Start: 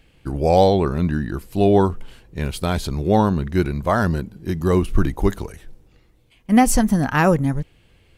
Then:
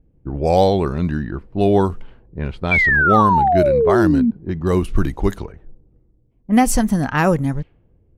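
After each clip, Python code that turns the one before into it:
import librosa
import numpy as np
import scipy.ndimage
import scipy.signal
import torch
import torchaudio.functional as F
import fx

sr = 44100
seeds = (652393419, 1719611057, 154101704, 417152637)

y = fx.env_lowpass(x, sr, base_hz=360.0, full_db=-14.0)
y = fx.spec_paint(y, sr, seeds[0], shape='fall', start_s=2.71, length_s=1.6, low_hz=220.0, high_hz=2400.0, level_db=-15.0)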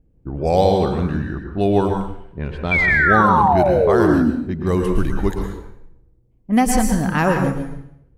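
y = fx.rev_plate(x, sr, seeds[1], rt60_s=0.68, hf_ratio=0.9, predelay_ms=100, drr_db=3.0)
y = F.gain(torch.from_numpy(y), -2.0).numpy()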